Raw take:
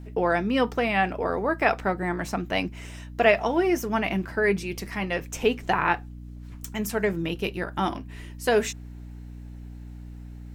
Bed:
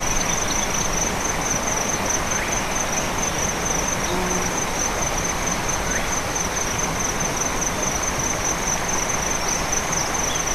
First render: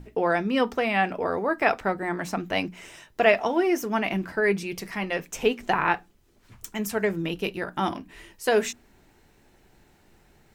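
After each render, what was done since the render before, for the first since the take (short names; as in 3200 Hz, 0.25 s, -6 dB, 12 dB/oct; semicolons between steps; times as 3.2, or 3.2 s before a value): notches 60/120/180/240/300 Hz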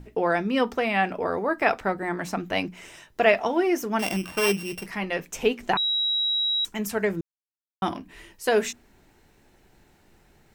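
3.99–4.86 sample sorter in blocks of 16 samples; 5.77–6.65 bleep 3860 Hz -21.5 dBFS; 7.21–7.82 mute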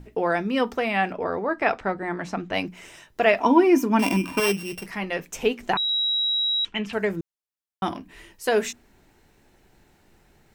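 1.12–2.54 air absorption 74 m; 3.4–4.4 small resonant body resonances 270/970/2400 Hz, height 16 dB, ringing for 50 ms; 5.89–6.93 synth low-pass 2900 Hz, resonance Q 3.7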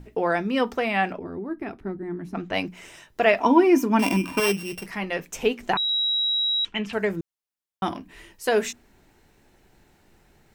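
1.19–2.35 spectral gain 430–9300 Hz -16 dB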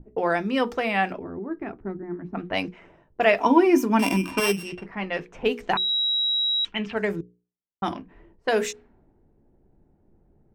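notches 60/120/180/240/300/360/420/480 Hz; low-pass opened by the level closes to 440 Hz, open at -21.5 dBFS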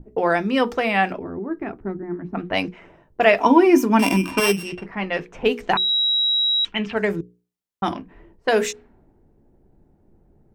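gain +4 dB; limiter -2 dBFS, peak gain reduction 1.5 dB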